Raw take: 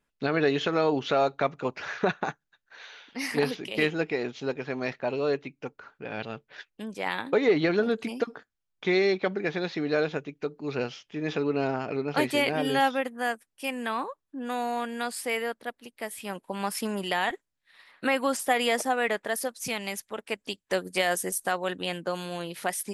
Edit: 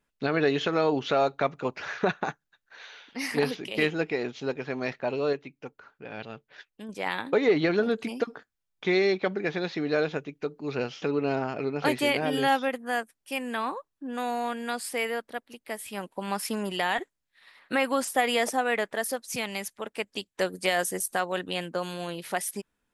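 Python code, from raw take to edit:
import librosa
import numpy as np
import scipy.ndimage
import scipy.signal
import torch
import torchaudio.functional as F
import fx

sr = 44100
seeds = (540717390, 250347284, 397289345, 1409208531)

y = fx.edit(x, sr, fx.clip_gain(start_s=5.33, length_s=1.56, db=-4.0),
    fx.cut(start_s=11.02, length_s=0.32), tone=tone)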